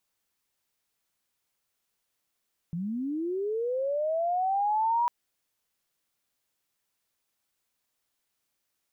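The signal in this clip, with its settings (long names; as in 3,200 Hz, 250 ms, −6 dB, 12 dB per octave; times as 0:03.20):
glide linear 160 Hz → 970 Hz −29.5 dBFS → −22 dBFS 2.35 s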